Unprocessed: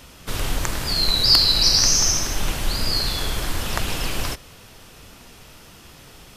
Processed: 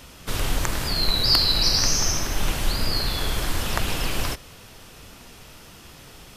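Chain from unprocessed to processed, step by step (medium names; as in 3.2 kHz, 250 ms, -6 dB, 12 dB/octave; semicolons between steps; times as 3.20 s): dynamic bell 6.6 kHz, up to -6 dB, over -32 dBFS, Q 0.78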